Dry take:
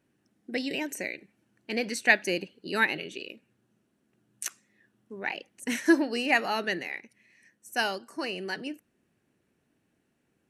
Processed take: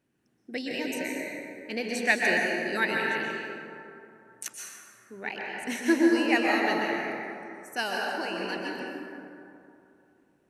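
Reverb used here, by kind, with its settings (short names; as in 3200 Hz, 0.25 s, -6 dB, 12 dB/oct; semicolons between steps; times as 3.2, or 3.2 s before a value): plate-style reverb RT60 2.8 s, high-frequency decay 0.4×, pre-delay 0.11 s, DRR -2.5 dB; gain -3 dB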